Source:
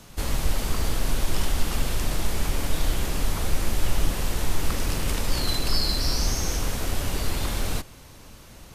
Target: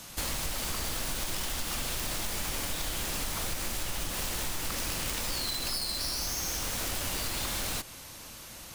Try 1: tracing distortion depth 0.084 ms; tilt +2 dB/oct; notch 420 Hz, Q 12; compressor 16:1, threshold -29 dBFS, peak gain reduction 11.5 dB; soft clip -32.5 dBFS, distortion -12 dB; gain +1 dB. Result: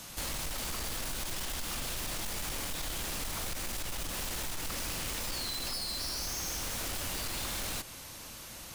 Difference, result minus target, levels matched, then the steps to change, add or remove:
soft clip: distortion +15 dB
change: soft clip -21 dBFS, distortion -26 dB

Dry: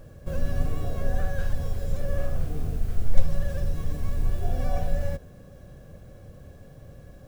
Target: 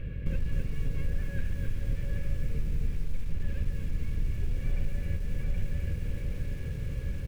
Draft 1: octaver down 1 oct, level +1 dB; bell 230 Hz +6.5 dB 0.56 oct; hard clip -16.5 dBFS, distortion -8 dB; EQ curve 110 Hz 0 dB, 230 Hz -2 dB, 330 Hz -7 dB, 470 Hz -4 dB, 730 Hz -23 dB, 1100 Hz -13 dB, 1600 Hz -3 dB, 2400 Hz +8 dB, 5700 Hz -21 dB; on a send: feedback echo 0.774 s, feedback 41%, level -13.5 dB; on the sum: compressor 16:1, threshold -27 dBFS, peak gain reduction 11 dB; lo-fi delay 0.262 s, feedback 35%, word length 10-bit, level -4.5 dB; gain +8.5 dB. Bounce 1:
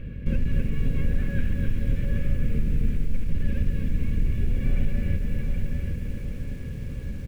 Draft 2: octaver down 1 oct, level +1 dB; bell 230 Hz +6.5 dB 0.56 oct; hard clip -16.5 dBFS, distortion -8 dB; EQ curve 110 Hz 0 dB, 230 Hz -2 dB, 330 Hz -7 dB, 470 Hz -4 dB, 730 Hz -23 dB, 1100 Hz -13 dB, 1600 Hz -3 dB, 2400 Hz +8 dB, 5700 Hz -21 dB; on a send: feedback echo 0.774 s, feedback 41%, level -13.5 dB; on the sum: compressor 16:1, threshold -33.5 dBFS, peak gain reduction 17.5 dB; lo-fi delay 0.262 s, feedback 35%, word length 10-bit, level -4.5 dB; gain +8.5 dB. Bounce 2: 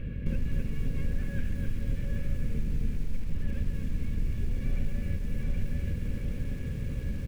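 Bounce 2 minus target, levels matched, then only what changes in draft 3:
250 Hz band +4.0 dB
change: bell 230 Hz -3 dB 0.56 oct

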